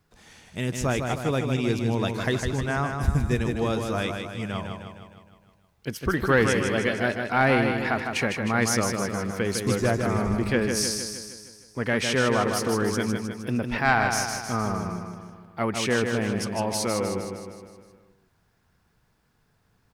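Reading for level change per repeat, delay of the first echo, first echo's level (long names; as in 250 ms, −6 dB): −5.0 dB, 155 ms, −5.5 dB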